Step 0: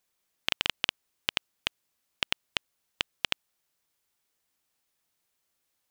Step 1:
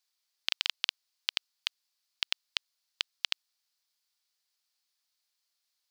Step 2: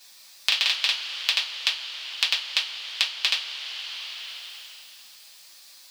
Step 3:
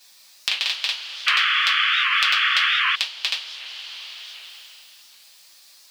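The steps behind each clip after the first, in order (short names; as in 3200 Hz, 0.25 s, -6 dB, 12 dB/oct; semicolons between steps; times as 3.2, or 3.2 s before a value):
HPF 820 Hz 12 dB/oct; bell 4600 Hz +12.5 dB 0.82 oct; gain -7 dB
reverb, pre-delay 3 ms, DRR -6.5 dB; three-band squash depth 70%; gain +3.5 dB
painted sound noise, 1.27–2.96, 1100–3500 Hz -19 dBFS; record warp 78 rpm, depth 160 cents; gain -1 dB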